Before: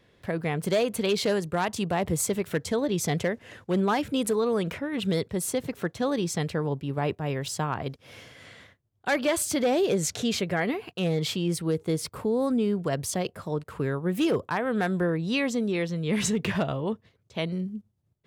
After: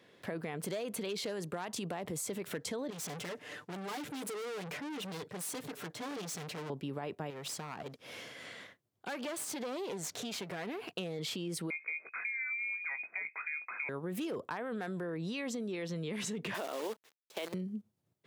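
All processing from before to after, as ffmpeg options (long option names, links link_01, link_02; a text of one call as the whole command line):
ffmpeg -i in.wav -filter_complex "[0:a]asettb=1/sr,asplit=3[link_01][link_02][link_03];[link_01]atrim=end=2.904[link_04];[link_02]atrim=start=2.9:end=6.7,asetpts=PTS-STARTPTS,afade=type=in:duration=0.004:curve=qsin,afade=type=out:start_time=3.796:duration=0.004:curve=qsin,aecho=1:1:6.7:0.75,atrim=end_sample=167580,aeval=exprs='(tanh(89.1*val(0)+0.45)-tanh(0.45))/89.1':channel_layout=same[link_05];[link_03]atrim=start=6.696[link_06];[link_04][link_05]acrossfade=duration=0.004:curve1=hsin:curve2=qsin[link_07];[link_07][link_06]acrossfade=duration=0.004:curve1=qsin:curve2=hsin,asettb=1/sr,asplit=3[link_08][link_09][link_10];[link_08]atrim=end=7.304[link_11];[link_09]atrim=start=7.3:end=10.9,asetpts=PTS-STARTPTS,afade=type=in:duration=0.004:curve=qsin,afade=type=out:start_time=3.596:duration=0.004:curve=qsin,highpass=frequency=55:poles=1,acompressor=threshold=-37dB:ratio=2.5:attack=3.2:release=140:knee=1:detection=peak,aeval=exprs='clip(val(0),-1,0.00841)':channel_layout=same[link_12];[link_10]atrim=start=10.896[link_13];[link_11][link_12]acrossfade=duration=0.004:curve1=hsin:curve2=qsin[link_14];[link_14][link_13]acrossfade=duration=0.004:curve1=qsin:curve2=hsin,asettb=1/sr,asplit=3[link_15][link_16][link_17];[link_15]atrim=end=11.704[link_18];[link_16]atrim=start=11.7:end=13.89,asetpts=PTS-STARTPTS,afade=type=in:duration=0.004:curve=qsin,afade=type=out:start_time=2.186:duration=0.004:curve=qsin,acompressor=threshold=-37dB:ratio=2:attack=3.2:release=140:knee=1:detection=peak,asplit=2[link_19][link_20];[link_20]adelay=19,volume=-10dB[link_21];[link_19][link_21]amix=inputs=2:normalize=0,atrim=end_sample=96579,lowpass=frequency=2200:width_type=q:width=0.5098,lowpass=frequency=2200:width_type=q:width=0.6013,lowpass=frequency=2200:width_type=q:width=0.9,lowpass=frequency=2200:width_type=q:width=2.563,afreqshift=-2600[link_22];[link_17]atrim=start=13.886[link_23];[link_18][link_22]acrossfade=duration=0.004:curve1=hsin:curve2=qsin[link_24];[link_24][link_23]acrossfade=duration=0.004:curve1=qsin:curve2=hsin,asettb=1/sr,asplit=3[link_25][link_26][link_27];[link_25]atrim=end=16.544[link_28];[link_26]atrim=start=16.54:end=17.54,asetpts=PTS-STARTPTS,afade=type=in:duration=0.004:curve=qsin,afade=type=out:start_time=0.996:duration=0.004:curve=qsin,highpass=frequency=310:width=0.5412,highpass=frequency=310:width=1.3066,acrusher=bits=7:dc=4:mix=0:aa=0.000001[link_29];[link_27]atrim=start=17.536[link_30];[link_28][link_29]acrossfade=duration=0.004:curve1=hsin:curve2=qsin[link_31];[link_31][link_30]acrossfade=duration=0.004:curve1=qsin:curve2=hsin,alimiter=level_in=1dB:limit=-24dB:level=0:latency=1:release=16,volume=-1dB,highpass=200,acompressor=threshold=-36dB:ratio=6,volume=1dB" out.wav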